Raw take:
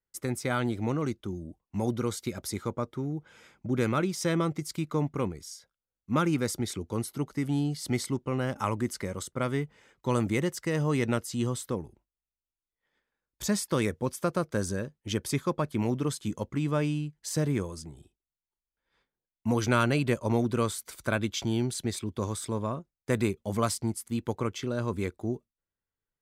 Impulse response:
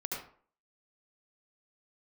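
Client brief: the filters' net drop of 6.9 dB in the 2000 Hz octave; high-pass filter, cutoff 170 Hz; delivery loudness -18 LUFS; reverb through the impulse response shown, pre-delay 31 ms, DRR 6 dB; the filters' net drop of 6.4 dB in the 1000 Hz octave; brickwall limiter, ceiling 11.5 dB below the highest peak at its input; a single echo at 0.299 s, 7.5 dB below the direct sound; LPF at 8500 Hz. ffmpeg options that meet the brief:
-filter_complex "[0:a]highpass=170,lowpass=8.5k,equalizer=f=1k:t=o:g=-6,equalizer=f=2k:t=o:g=-7,alimiter=level_in=2dB:limit=-24dB:level=0:latency=1,volume=-2dB,aecho=1:1:299:0.422,asplit=2[a][b];[1:a]atrim=start_sample=2205,adelay=31[c];[b][c]afir=irnorm=-1:irlink=0,volume=-8.5dB[d];[a][d]amix=inputs=2:normalize=0,volume=17.5dB"

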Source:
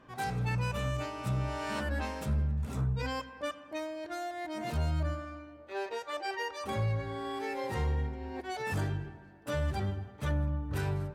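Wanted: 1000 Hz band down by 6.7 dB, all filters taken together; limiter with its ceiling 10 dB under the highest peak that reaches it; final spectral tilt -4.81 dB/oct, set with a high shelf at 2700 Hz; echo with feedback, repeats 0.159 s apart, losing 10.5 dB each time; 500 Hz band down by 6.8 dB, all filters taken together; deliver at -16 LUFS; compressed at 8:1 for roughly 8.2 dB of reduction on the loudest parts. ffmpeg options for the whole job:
-af "equalizer=f=500:t=o:g=-7,equalizer=f=1k:t=o:g=-7,highshelf=f=2.7k:g=5,acompressor=threshold=-36dB:ratio=8,alimiter=level_in=14dB:limit=-24dB:level=0:latency=1,volume=-14dB,aecho=1:1:159|318|477:0.299|0.0896|0.0269,volume=30dB"

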